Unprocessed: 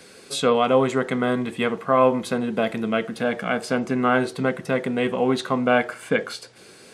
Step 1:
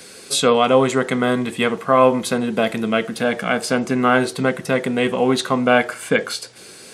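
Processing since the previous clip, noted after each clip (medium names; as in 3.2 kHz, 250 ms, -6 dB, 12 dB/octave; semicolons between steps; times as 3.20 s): treble shelf 4 kHz +8 dB; trim +3.5 dB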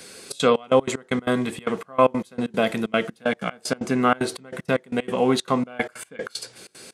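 trance gate "xxxx.xx..x.x..x." 189 bpm -24 dB; trim -2.5 dB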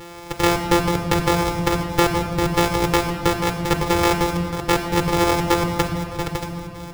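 sorted samples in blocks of 256 samples; compression 4:1, threshold -20 dBFS, peak gain reduction 8.5 dB; reverberation RT60 2.4 s, pre-delay 5 ms, DRR 6 dB; trim +3.5 dB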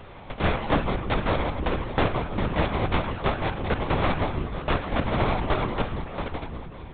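LPC vocoder at 8 kHz whisper; trim -5 dB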